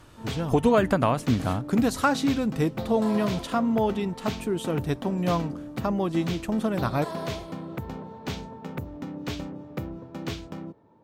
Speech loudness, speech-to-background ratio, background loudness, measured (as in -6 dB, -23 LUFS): -26.0 LUFS, 10.0 dB, -36.0 LUFS